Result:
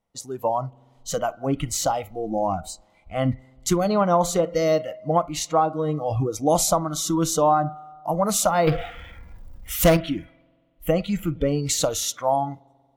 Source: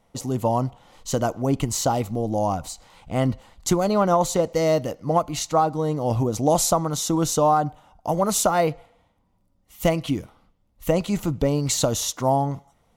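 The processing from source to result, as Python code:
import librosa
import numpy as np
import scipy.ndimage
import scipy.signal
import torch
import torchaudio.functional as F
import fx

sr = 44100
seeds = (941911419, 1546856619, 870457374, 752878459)

y = fx.power_curve(x, sr, exponent=0.5, at=(8.67, 9.97))
y = fx.rev_spring(y, sr, rt60_s=2.1, pass_ms=(46,), chirp_ms=75, drr_db=15.5)
y = fx.noise_reduce_blind(y, sr, reduce_db=16)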